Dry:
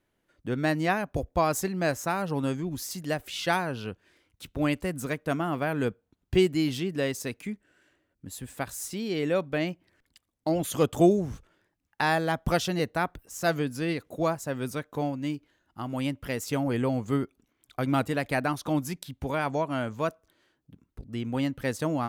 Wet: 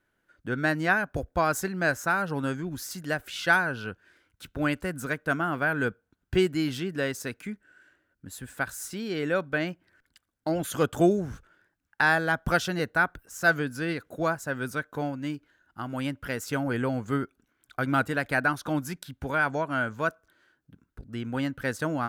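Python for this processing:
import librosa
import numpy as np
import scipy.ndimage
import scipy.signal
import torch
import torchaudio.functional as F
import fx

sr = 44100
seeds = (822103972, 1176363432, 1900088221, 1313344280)

y = fx.peak_eq(x, sr, hz=1500.0, db=13.0, octaves=0.38)
y = F.gain(torch.from_numpy(y), -1.5).numpy()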